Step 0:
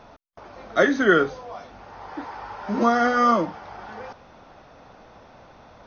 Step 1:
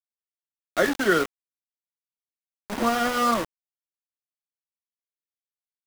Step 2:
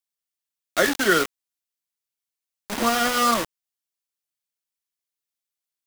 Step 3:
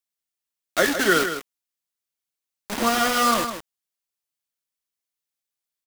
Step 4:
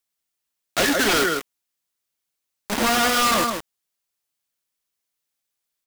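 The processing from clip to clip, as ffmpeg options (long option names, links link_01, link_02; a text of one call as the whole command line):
ffmpeg -i in.wav -af "aeval=exprs='val(0)*gte(abs(val(0)),0.0841)':channel_layout=same,volume=-3.5dB" out.wav
ffmpeg -i in.wav -af "highshelf=frequency=2100:gain=8.5" out.wav
ffmpeg -i in.wav -af "aecho=1:1:157:0.355" out.wav
ffmpeg -i in.wav -af "aeval=exprs='0.447*sin(PI/2*3.16*val(0)/0.447)':channel_layout=same,volume=-8dB" out.wav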